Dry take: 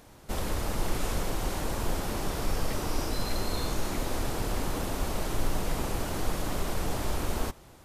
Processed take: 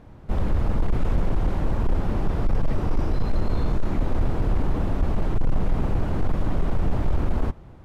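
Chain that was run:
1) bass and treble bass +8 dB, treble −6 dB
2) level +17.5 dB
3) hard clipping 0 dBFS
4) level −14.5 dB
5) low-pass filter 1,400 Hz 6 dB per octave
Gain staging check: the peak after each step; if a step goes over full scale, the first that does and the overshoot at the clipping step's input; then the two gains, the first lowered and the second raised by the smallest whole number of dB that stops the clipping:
−9.0, +8.5, 0.0, −14.5, −14.5 dBFS
step 2, 8.5 dB
step 2 +8.5 dB, step 4 −5.5 dB

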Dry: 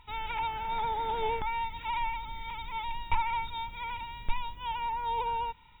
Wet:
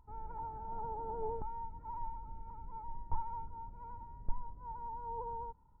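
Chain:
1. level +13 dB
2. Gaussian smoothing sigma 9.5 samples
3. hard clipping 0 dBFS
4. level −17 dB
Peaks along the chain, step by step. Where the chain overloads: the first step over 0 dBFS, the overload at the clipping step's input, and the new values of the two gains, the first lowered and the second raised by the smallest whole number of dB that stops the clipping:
−1.5, −4.0, −4.0, −21.0 dBFS
no step passes full scale

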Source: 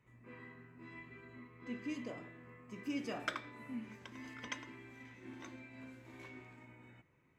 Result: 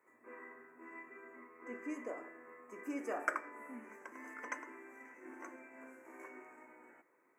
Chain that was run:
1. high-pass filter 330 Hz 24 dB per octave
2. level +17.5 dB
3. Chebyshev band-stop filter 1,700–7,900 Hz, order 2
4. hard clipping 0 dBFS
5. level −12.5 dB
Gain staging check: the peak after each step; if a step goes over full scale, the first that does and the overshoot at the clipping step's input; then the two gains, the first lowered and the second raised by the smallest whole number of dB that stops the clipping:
−20.5, −3.0, −4.5, −4.5, −17.0 dBFS
no step passes full scale

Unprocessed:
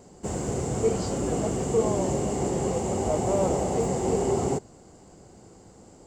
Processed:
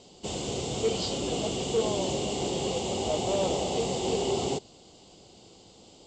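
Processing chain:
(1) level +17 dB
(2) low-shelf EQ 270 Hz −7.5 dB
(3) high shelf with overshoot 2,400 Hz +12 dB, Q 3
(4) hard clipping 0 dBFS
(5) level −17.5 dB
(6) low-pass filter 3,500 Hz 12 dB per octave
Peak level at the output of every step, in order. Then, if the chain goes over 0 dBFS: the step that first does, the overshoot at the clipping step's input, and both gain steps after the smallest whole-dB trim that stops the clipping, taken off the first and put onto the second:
+5.5, +3.0, +6.5, 0.0, −17.5, −17.5 dBFS
step 1, 6.5 dB
step 1 +10 dB, step 5 −10.5 dB

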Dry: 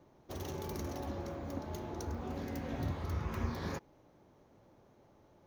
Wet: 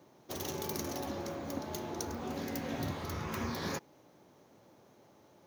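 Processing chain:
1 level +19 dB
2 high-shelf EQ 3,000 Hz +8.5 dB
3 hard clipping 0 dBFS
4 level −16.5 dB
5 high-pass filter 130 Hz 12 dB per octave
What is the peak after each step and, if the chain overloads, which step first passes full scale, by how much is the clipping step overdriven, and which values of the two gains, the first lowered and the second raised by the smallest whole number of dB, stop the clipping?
−3.5, −3.0, −3.0, −19.5, −21.0 dBFS
no step passes full scale

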